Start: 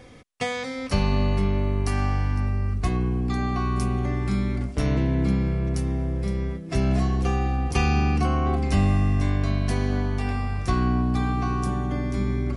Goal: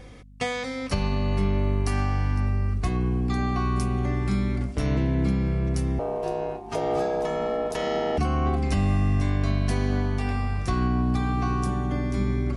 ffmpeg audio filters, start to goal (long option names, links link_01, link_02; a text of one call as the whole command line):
ffmpeg -i in.wav -filter_complex "[0:a]alimiter=limit=-14.5dB:level=0:latency=1:release=252,asettb=1/sr,asplit=3[link_01][link_02][link_03];[link_01]atrim=end=5.994[link_04];[link_02]atrim=start=5.99:end=8.18,asetpts=PTS-STARTPTS,afade=type=in:duration=0.004:curve=qsin,afade=type=out:start_time=2.186:duration=0.004:curve=qsin,aeval=exprs='val(0)*sin(2*PI*550*n/s)':channel_layout=same[link_05];[link_03]atrim=start=8.176[link_06];[link_04][link_05]acrossfade=duration=0.004:curve1=hsin:curve2=qsin[link_07];[link_07][link_06]acrossfade=duration=0.004:curve1=qsin:curve2=hsin,aeval=exprs='val(0)+0.00447*(sin(2*PI*50*n/s)+sin(2*PI*2*50*n/s)/2+sin(2*PI*3*50*n/s)/3+sin(2*PI*4*50*n/s)/4+sin(2*PI*5*50*n/s)/5)':channel_layout=same" out.wav